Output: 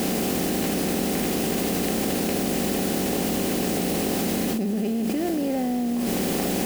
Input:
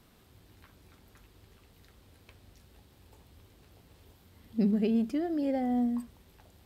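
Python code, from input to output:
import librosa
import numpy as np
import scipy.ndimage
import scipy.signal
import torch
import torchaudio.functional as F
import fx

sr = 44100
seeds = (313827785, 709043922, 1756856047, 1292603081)

p1 = fx.bin_compress(x, sr, power=0.4)
p2 = fx.quant_dither(p1, sr, seeds[0], bits=6, dither='triangular')
p3 = p1 + (p2 * 10.0 ** (-4.0 / 20.0))
p4 = fx.env_flatten(p3, sr, amount_pct=100)
y = p4 * 10.0 ** (-7.5 / 20.0)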